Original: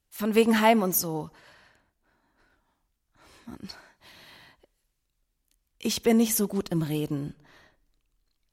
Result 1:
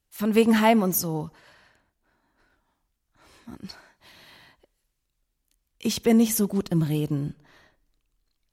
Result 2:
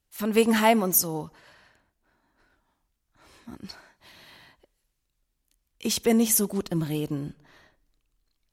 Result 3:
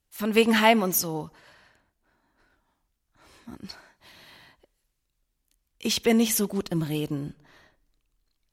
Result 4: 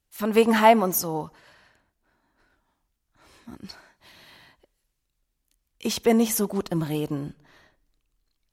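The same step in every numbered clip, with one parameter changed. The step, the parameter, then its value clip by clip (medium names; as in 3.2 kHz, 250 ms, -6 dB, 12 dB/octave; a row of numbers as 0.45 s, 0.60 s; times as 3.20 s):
dynamic bell, frequency: 130 Hz, 9.5 kHz, 2.9 kHz, 880 Hz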